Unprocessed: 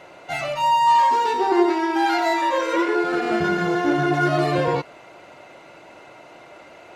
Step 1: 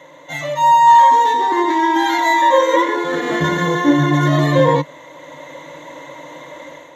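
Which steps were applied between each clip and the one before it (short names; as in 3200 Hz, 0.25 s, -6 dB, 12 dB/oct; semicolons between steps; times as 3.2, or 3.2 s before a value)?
ripple EQ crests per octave 1.1, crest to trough 16 dB; AGC gain up to 8 dB; HPF 100 Hz 24 dB/oct; gain -1 dB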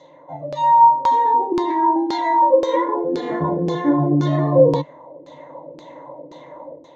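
band shelf 2000 Hz -13 dB; LFO low-pass saw down 1.9 Hz 310–4800 Hz; gain -4 dB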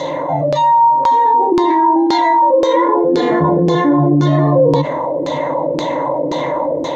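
fast leveller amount 70%; gain -1 dB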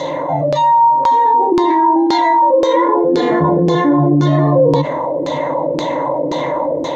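nothing audible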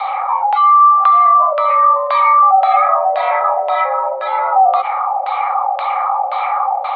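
mistuned SSB +240 Hz 430–3000 Hz; gain +2 dB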